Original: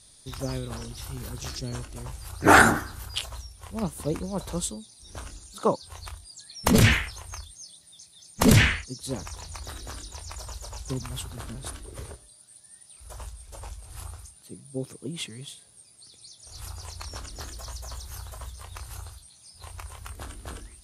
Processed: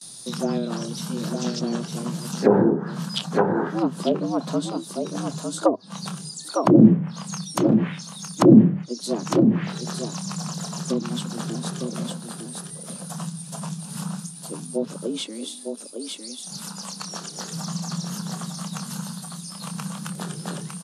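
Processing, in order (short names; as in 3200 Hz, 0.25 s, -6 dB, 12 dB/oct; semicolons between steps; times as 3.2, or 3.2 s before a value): low shelf 370 Hz +2.5 dB; gate with hold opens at -44 dBFS; bell 2000 Hz -8.5 dB 0.74 oct; echo 0.906 s -6.5 dB; treble ducked by the level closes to 330 Hz, closed at -16.5 dBFS; 16.56–17.52 HPF 170 Hz 6 dB/oct; frequency shift +110 Hz; mismatched tape noise reduction encoder only; gain +5 dB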